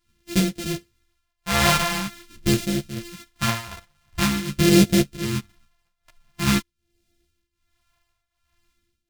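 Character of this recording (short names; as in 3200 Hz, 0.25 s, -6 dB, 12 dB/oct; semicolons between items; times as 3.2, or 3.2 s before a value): a buzz of ramps at a fixed pitch in blocks of 128 samples; phasing stages 2, 0.46 Hz, lowest notch 300–1000 Hz; tremolo triangle 1.3 Hz, depth 85%; a shimmering, thickened sound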